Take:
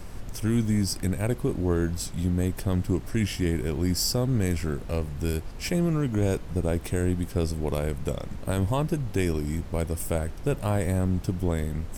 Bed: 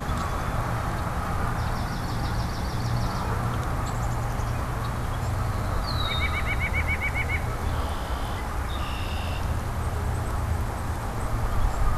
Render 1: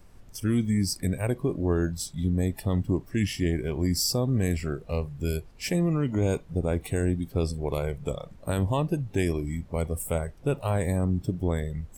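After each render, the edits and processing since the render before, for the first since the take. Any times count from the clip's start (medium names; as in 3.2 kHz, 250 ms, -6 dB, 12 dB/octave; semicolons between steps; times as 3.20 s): noise print and reduce 14 dB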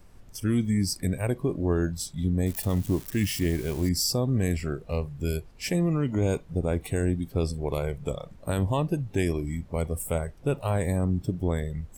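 2.46–3.89 s: zero-crossing glitches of -28.5 dBFS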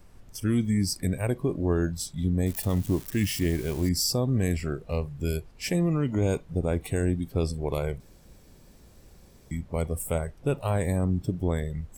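8.00–9.51 s: room tone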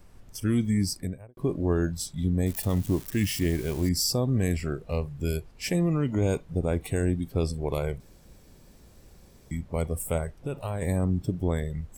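0.82–1.37 s: studio fade out; 10.27–10.82 s: compression 3:1, threshold -29 dBFS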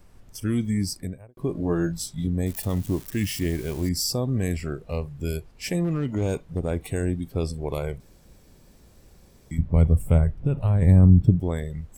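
1.53–2.27 s: doubling 18 ms -4 dB; 5.84–6.72 s: overload inside the chain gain 18.5 dB; 9.58–11.40 s: tone controls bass +14 dB, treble -10 dB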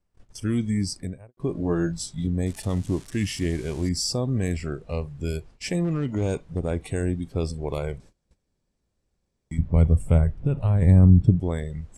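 gate -46 dBFS, range -23 dB; low-pass 9.5 kHz 24 dB/octave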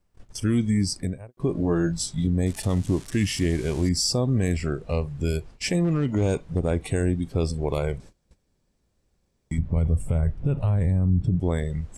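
in parallel at -1.5 dB: compression, threshold -30 dBFS, peak gain reduction 18.5 dB; on the sum: peak limiter -14 dBFS, peak gain reduction 10.5 dB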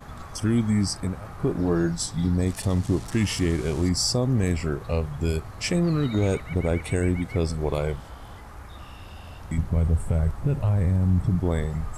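add bed -12.5 dB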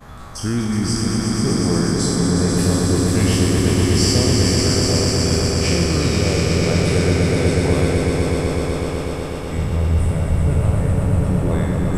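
spectral sustain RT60 1.17 s; echo with a slow build-up 123 ms, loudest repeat 5, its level -5 dB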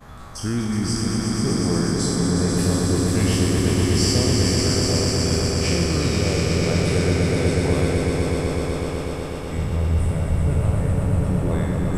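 trim -3 dB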